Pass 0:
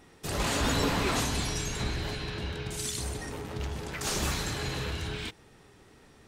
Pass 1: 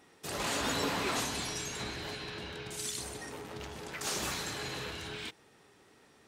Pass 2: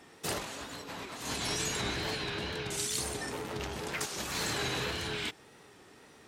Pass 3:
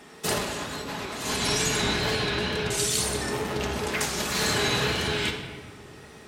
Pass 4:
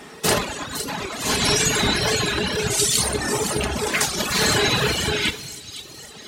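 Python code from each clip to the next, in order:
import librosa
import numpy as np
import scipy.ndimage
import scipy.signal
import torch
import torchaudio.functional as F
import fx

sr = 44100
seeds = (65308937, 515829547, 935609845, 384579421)

y1 = fx.highpass(x, sr, hz=280.0, slope=6)
y1 = y1 * librosa.db_to_amplitude(-3.0)
y2 = fx.over_compress(y1, sr, threshold_db=-38.0, ratio=-0.5)
y2 = fx.wow_flutter(y2, sr, seeds[0], rate_hz=2.1, depth_cents=68.0)
y2 = y2 * librosa.db_to_amplitude(3.5)
y3 = fx.room_shoebox(y2, sr, seeds[1], volume_m3=1800.0, walls='mixed', distance_m=1.4)
y3 = y3 * librosa.db_to_amplitude(6.5)
y4 = fx.echo_wet_highpass(y3, sr, ms=510, feedback_pct=51, hz=4100.0, wet_db=-6)
y4 = fx.dereverb_blind(y4, sr, rt60_s=1.7)
y4 = y4 * librosa.db_to_amplitude(8.0)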